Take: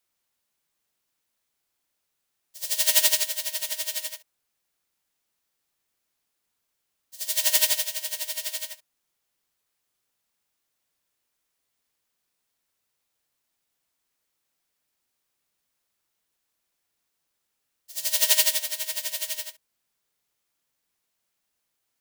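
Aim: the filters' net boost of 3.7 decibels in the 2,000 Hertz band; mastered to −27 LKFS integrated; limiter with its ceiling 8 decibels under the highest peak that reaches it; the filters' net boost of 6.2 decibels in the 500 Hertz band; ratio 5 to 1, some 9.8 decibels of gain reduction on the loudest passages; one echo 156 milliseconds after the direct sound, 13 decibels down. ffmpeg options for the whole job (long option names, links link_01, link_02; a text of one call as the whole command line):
ffmpeg -i in.wav -af "equalizer=frequency=500:width_type=o:gain=8.5,equalizer=frequency=2000:width_type=o:gain=4,acompressor=threshold=-26dB:ratio=5,alimiter=limit=-21dB:level=0:latency=1,aecho=1:1:156:0.224,volume=4.5dB" out.wav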